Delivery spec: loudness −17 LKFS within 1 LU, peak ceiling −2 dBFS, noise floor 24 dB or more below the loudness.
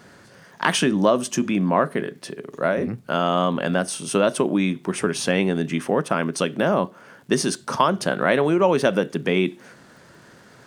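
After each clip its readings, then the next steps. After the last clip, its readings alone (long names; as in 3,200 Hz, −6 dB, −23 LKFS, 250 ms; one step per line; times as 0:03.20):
crackle rate 48 per second; integrated loudness −22.0 LKFS; sample peak −2.5 dBFS; target loudness −17.0 LKFS
→ click removal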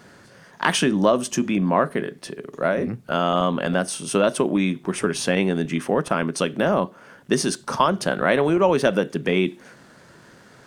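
crackle rate 1.2 per second; integrated loudness −22.0 LKFS; sample peak −2.5 dBFS; target loudness −17.0 LKFS
→ level +5 dB
brickwall limiter −2 dBFS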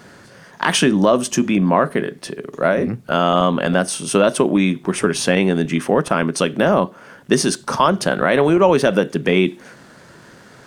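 integrated loudness −17.5 LKFS; sample peak −2.0 dBFS; background noise floor −45 dBFS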